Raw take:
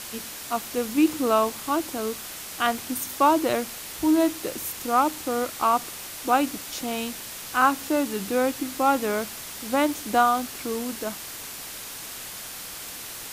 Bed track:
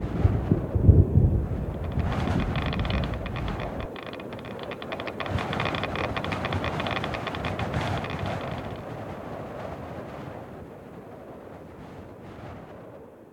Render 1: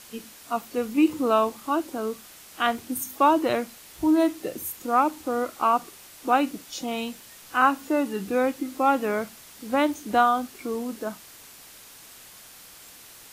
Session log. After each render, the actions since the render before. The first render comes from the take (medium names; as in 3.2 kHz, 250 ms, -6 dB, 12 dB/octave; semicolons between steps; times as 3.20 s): noise print and reduce 10 dB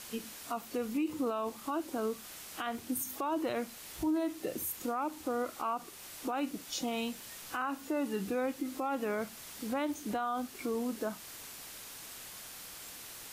compression 1.5:1, threshold -37 dBFS, peak gain reduction 8.5 dB; peak limiter -25.5 dBFS, peak gain reduction 10 dB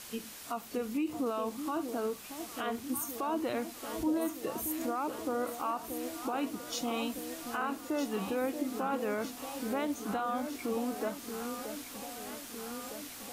echo whose repeats swap between lows and highs 629 ms, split 810 Hz, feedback 81%, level -7.5 dB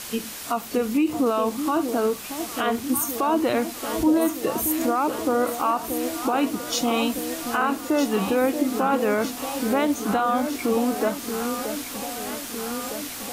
trim +11.5 dB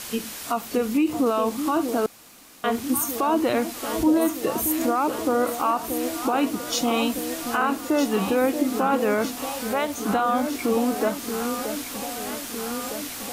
2.06–2.64 s: room tone; 9.53–9.98 s: peaking EQ 290 Hz -10 dB 0.88 oct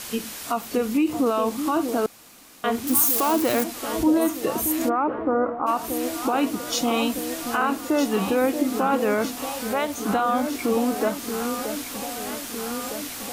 2.87–3.64 s: zero-crossing glitches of -18 dBFS; 4.88–5.66 s: low-pass 2.3 kHz -> 1.3 kHz 24 dB/octave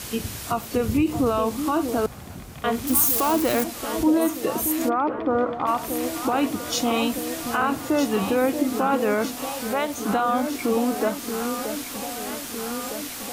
add bed track -13.5 dB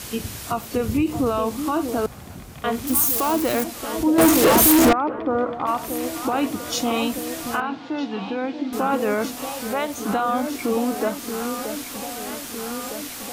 4.18–4.93 s: waveshaping leveller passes 5; 7.60–8.73 s: cabinet simulation 230–4000 Hz, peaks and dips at 380 Hz -10 dB, 580 Hz -10 dB, 1.2 kHz -8 dB, 1.9 kHz -6 dB, 2.7 kHz -3 dB